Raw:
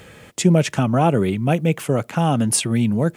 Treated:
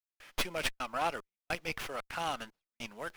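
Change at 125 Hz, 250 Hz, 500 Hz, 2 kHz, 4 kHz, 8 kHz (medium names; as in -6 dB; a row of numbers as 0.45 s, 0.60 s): -33.0 dB, -29.0 dB, -19.0 dB, -7.0 dB, -9.0 dB, -21.0 dB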